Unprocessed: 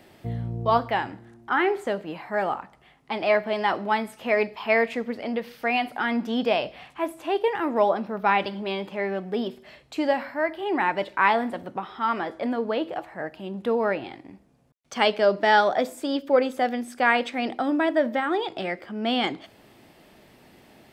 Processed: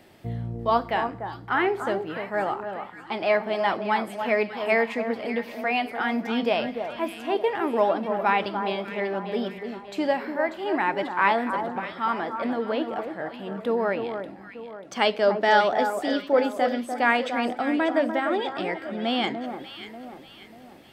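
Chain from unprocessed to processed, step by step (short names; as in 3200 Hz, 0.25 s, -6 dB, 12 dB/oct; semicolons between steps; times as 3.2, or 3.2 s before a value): echo with dull and thin repeats by turns 0.295 s, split 1500 Hz, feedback 64%, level -7 dB; gain -1 dB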